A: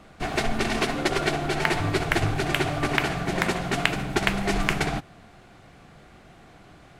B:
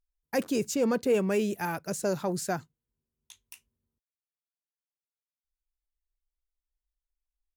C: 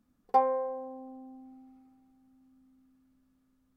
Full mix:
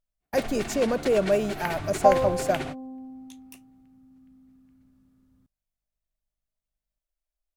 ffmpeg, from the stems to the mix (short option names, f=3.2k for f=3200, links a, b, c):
-filter_complex "[0:a]aeval=exprs='val(0)+0.0141*(sin(2*PI*50*n/s)+sin(2*PI*2*50*n/s)/2+sin(2*PI*3*50*n/s)/3+sin(2*PI*4*50*n/s)/4+sin(2*PI*5*50*n/s)/5)':c=same,volume=-9.5dB[a];[1:a]equalizer=f=620:w=4.6:g=15,volume=-1dB,asplit=2[b][c];[2:a]equalizer=f=100:w=0.46:g=13,adelay=1700,volume=2dB[d];[c]apad=whole_len=308515[e];[a][e]sidechaingate=range=-50dB:threshold=-45dB:ratio=16:detection=peak[f];[f][b][d]amix=inputs=3:normalize=0"